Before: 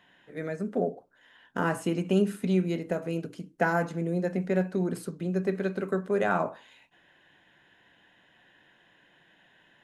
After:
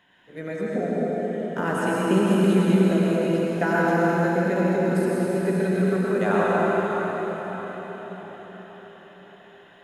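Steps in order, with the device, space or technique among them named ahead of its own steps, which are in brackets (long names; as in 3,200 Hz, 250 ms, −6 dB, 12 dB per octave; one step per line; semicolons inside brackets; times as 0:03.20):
cathedral (convolution reverb RT60 5.8 s, pre-delay 85 ms, DRR −6.5 dB)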